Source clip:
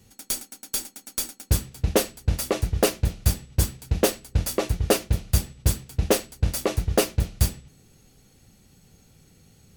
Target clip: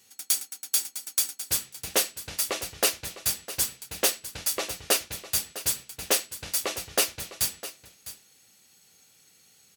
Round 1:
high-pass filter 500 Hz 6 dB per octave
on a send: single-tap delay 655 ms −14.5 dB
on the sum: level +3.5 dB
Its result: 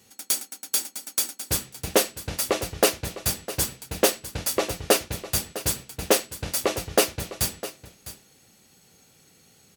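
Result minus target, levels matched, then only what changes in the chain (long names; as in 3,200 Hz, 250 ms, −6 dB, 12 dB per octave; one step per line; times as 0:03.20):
500 Hz band +7.5 dB
change: high-pass filter 2,000 Hz 6 dB per octave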